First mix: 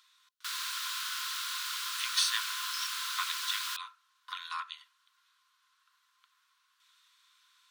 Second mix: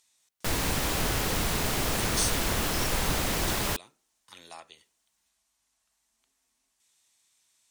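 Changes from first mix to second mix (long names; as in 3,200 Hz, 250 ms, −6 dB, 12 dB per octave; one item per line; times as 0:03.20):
speech: add resonant band-pass 7,900 Hz, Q 1.4
master: remove Chebyshev high-pass with heavy ripple 1,000 Hz, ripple 9 dB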